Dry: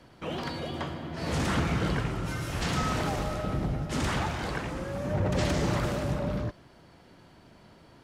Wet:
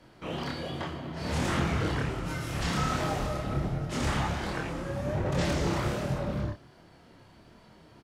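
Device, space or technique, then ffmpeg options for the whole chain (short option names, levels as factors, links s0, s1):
double-tracked vocal: -filter_complex "[0:a]asplit=2[s0][s1];[s1]adelay=29,volume=0.501[s2];[s0][s2]amix=inputs=2:normalize=0,flanger=delay=22.5:depth=7.6:speed=1.3,volume=1.19"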